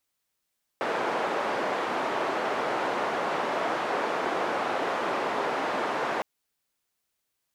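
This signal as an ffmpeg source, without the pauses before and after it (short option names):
-f lavfi -i "anoisesrc=c=white:d=5.41:r=44100:seed=1,highpass=f=370,lowpass=f=970,volume=-8.6dB"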